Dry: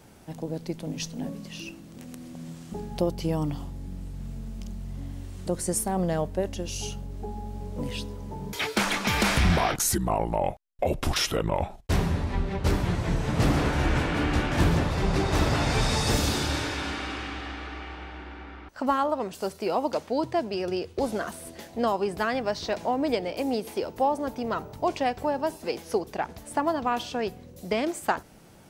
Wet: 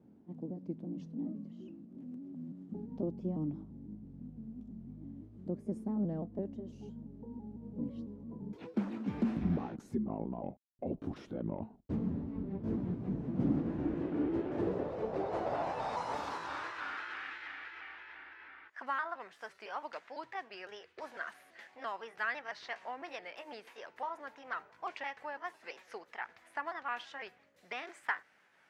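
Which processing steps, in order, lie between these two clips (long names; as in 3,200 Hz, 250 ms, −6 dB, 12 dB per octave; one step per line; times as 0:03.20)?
pitch shifter gated in a rhythm +2 semitones, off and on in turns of 168 ms
band-pass filter sweep 240 Hz → 1,800 Hz, 0:13.62–0:17.40
level −1.5 dB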